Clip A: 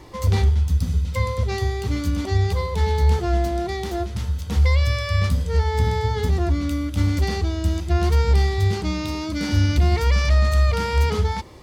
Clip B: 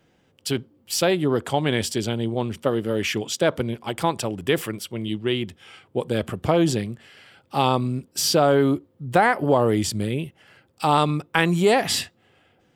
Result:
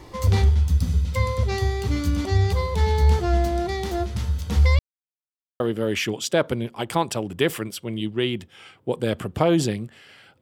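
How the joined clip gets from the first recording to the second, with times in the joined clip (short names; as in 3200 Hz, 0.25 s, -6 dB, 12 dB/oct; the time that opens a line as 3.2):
clip A
4.79–5.6 mute
5.6 switch to clip B from 2.68 s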